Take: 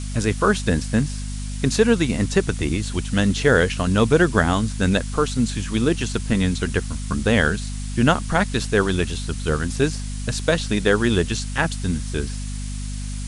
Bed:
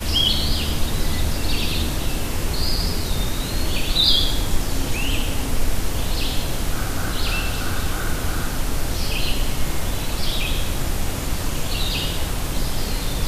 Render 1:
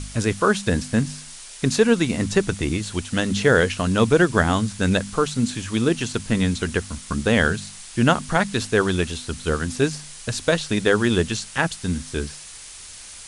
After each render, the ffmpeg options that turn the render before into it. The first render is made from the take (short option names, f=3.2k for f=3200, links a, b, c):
-af "bandreject=f=50:t=h:w=4,bandreject=f=100:t=h:w=4,bandreject=f=150:t=h:w=4,bandreject=f=200:t=h:w=4,bandreject=f=250:t=h:w=4"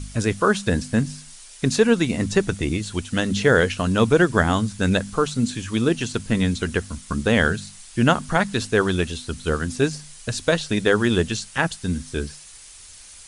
-af "afftdn=nr=6:nf=-40"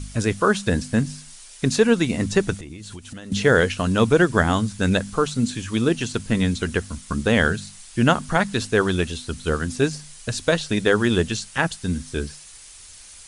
-filter_complex "[0:a]asettb=1/sr,asplit=3[a][b][c];[a]atrim=end=2.604[d];[b]atrim=start=2.6:end=3.32,asetpts=PTS-STARTPTS,afade=t=in:d=0.004:c=qsin,afade=t=out:st=0.716:d=0.004:c=qsin,acompressor=threshold=-33dB:ratio=12:attack=3.2:release=140:knee=1:detection=peak[e];[c]atrim=start=3.316[f];[d][e]acrossfade=d=0.004:c1=hsin:c2=qsin[g];[g][f]acrossfade=d=0.004:c1=qsin:c2=hsin"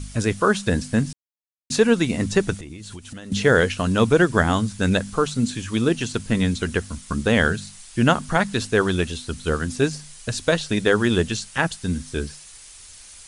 -filter_complex "[0:a]asplit=3[a][b][c];[a]atrim=end=1.13,asetpts=PTS-STARTPTS,afade=t=out:st=1.126:d=0.004:c=hsin[d];[b]atrim=start=1.13:end=1.7,asetpts=PTS-STARTPTS,volume=0[e];[c]atrim=start=1.7,asetpts=PTS-STARTPTS,afade=t=in:d=0.004:c=hsin[f];[d][e][f]concat=n=3:v=0:a=1"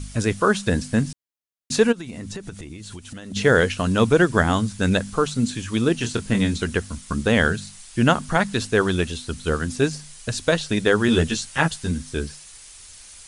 -filter_complex "[0:a]asplit=3[a][b][c];[a]afade=t=out:st=1.91:d=0.02[d];[b]acompressor=threshold=-29dB:ratio=16:attack=3.2:release=140:knee=1:detection=peak,afade=t=in:st=1.91:d=0.02,afade=t=out:st=3.35:d=0.02[e];[c]afade=t=in:st=3.35:d=0.02[f];[d][e][f]amix=inputs=3:normalize=0,asettb=1/sr,asplit=3[g][h][i];[g]atrim=end=6.004[j];[h]atrim=start=6:end=6.64,asetpts=PTS-STARTPTS,afade=t=in:d=0.004:c=qsin,afade=t=out:st=0.636:d=0.004:c=qsin,asplit=2[k][l];[l]adelay=25,volume=-7dB[m];[k][m]amix=inputs=2:normalize=0,atrim=end_sample=28224[n];[i]atrim=start=6.636[o];[j][n]acrossfade=d=0.004:c1=hsin:c2=qsin[p];[p][o]acrossfade=d=0.004:c1=qsin:c2=hsin,asettb=1/sr,asplit=3[q][r][s];[q]atrim=end=11.074[t];[r]atrim=start=11.07:end=11.91,asetpts=PTS-STARTPTS,afade=t=in:d=0.004:c=qsin,afade=t=out:st=0.836:d=0.004:c=qsin,asplit=2[u][v];[v]adelay=13,volume=-3dB[w];[u][w]amix=inputs=2:normalize=0,atrim=end_sample=37044[x];[s]atrim=start=11.906[y];[t][x]acrossfade=d=0.004:c1=hsin:c2=qsin[z];[z][y]acrossfade=d=0.004:c1=qsin:c2=hsin"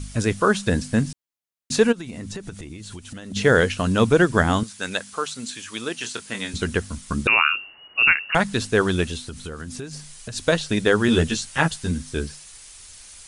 -filter_complex "[0:a]asettb=1/sr,asplit=3[a][b][c];[a]atrim=end=4.634[d];[b]atrim=start=4.63:end=6.54,asetpts=PTS-STARTPTS,afade=t=in:d=0.004:c=qsin,afade=t=out:st=1.906:d=0.004:c=qsin,highpass=f=1.1k:p=1[e];[c]atrim=start=6.536[f];[d][e]acrossfade=d=0.004:c1=hsin:c2=qsin[g];[g][f]acrossfade=d=0.004:c1=qsin:c2=hsin,asettb=1/sr,asplit=3[h][i][j];[h]atrim=end=7.274[k];[i]atrim=start=7.27:end=8.35,asetpts=PTS-STARTPTS,afade=t=in:d=0.004:c=qsin,afade=t=out:st=1.076:d=0.004:c=qsin,lowpass=f=2.5k:t=q:w=0.5098,lowpass=f=2.5k:t=q:w=0.6013,lowpass=f=2.5k:t=q:w=0.9,lowpass=f=2.5k:t=q:w=2.563,afreqshift=-2900[l];[j]atrim=start=8.346[m];[k][l]acrossfade=d=0.004:c1=hsin:c2=qsin[n];[n][m]acrossfade=d=0.004:c1=qsin:c2=hsin,asplit=3[o][p][q];[o]afade=t=out:st=9.22:d=0.02[r];[p]acompressor=threshold=-29dB:ratio=10:attack=3.2:release=140:knee=1:detection=peak,afade=t=in:st=9.22:d=0.02,afade=t=out:st=10.35:d=0.02[s];[q]afade=t=in:st=10.35:d=0.02[t];[r][s][t]amix=inputs=3:normalize=0"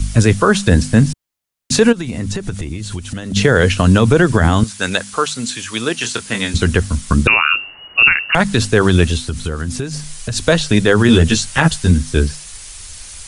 -filter_complex "[0:a]acrossover=split=130|780[a][b][c];[a]acontrast=70[d];[d][b][c]amix=inputs=3:normalize=0,alimiter=level_in=9.5dB:limit=-1dB:release=50:level=0:latency=1"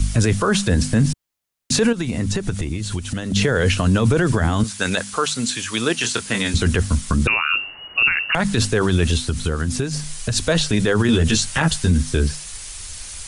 -af "alimiter=limit=-8.5dB:level=0:latency=1:release=21"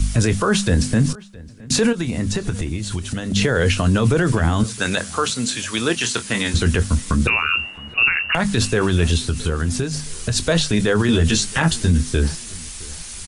-filter_complex "[0:a]asplit=2[a][b];[b]adelay=24,volume=-13.5dB[c];[a][c]amix=inputs=2:normalize=0,asplit=2[d][e];[e]adelay=667,lowpass=f=3.4k:p=1,volume=-22dB,asplit=2[f][g];[g]adelay=667,lowpass=f=3.4k:p=1,volume=0.4,asplit=2[h][i];[i]adelay=667,lowpass=f=3.4k:p=1,volume=0.4[j];[d][f][h][j]amix=inputs=4:normalize=0"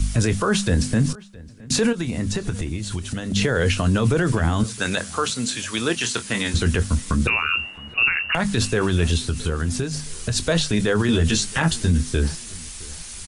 -af "volume=-2.5dB"